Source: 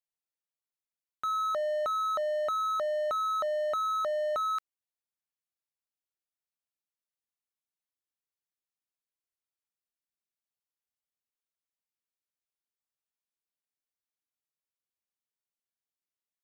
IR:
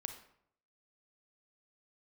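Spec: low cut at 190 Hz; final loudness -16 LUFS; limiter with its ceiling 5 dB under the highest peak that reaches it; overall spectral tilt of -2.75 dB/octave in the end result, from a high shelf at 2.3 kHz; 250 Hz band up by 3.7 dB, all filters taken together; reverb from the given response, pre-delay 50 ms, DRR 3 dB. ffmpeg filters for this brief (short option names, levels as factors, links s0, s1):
-filter_complex "[0:a]highpass=190,equalizer=f=250:t=o:g=6.5,highshelf=f=2300:g=-4.5,alimiter=level_in=2:limit=0.0631:level=0:latency=1,volume=0.501,asplit=2[s0][s1];[1:a]atrim=start_sample=2205,adelay=50[s2];[s1][s2]afir=irnorm=-1:irlink=0,volume=0.891[s3];[s0][s3]amix=inputs=2:normalize=0,volume=11.2"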